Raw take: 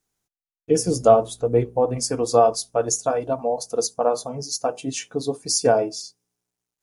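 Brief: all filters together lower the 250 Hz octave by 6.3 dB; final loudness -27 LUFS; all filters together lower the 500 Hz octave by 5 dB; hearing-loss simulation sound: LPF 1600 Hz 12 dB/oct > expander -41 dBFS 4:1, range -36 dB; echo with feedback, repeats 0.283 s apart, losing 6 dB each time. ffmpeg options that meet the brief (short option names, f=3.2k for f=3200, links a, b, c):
-af "lowpass=1.6k,equalizer=f=250:t=o:g=-6.5,equalizer=f=500:t=o:g=-5,aecho=1:1:283|566|849|1132|1415|1698:0.501|0.251|0.125|0.0626|0.0313|0.0157,agate=range=-36dB:threshold=-41dB:ratio=4,volume=-1dB"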